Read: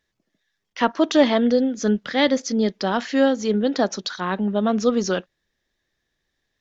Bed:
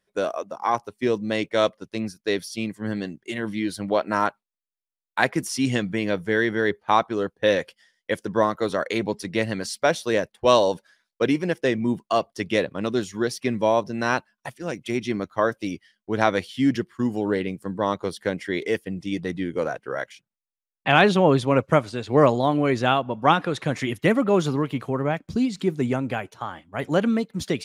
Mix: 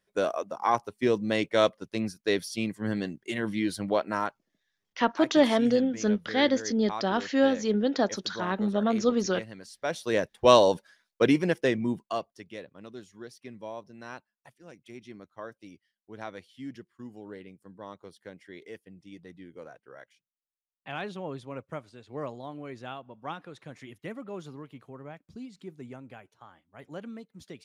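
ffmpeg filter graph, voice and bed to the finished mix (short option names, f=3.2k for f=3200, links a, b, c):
-filter_complex "[0:a]adelay=4200,volume=-5dB[a];[1:a]volume=14dB,afade=t=out:st=3.74:d=0.82:silence=0.188365,afade=t=in:st=9.76:d=0.64:silence=0.158489,afade=t=out:st=11.37:d=1.07:silence=0.112202[b];[a][b]amix=inputs=2:normalize=0"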